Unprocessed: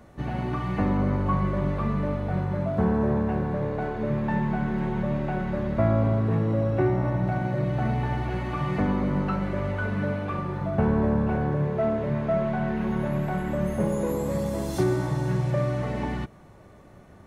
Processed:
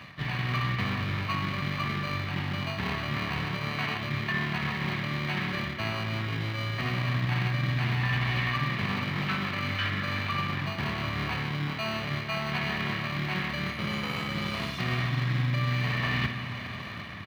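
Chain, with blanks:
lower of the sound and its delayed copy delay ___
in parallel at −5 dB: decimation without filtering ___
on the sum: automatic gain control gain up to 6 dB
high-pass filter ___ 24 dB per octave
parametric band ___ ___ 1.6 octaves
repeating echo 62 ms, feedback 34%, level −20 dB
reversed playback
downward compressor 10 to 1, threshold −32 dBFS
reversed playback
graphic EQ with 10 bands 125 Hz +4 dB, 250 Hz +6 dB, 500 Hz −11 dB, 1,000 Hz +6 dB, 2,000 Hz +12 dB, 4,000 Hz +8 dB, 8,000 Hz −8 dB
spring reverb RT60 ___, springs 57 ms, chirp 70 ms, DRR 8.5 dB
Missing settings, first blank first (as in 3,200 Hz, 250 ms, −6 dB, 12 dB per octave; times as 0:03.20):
1.7 ms, 25×, 80 Hz, 3,300 Hz, +7.5 dB, 3.1 s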